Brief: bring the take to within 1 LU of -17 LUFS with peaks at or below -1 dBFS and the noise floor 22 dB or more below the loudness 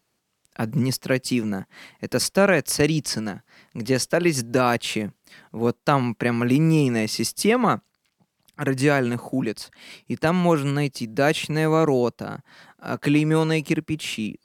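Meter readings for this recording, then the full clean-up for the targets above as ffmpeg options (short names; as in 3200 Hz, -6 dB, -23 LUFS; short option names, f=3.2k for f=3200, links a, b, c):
loudness -22.5 LUFS; peak -4.5 dBFS; loudness target -17.0 LUFS
-> -af "volume=5.5dB,alimiter=limit=-1dB:level=0:latency=1"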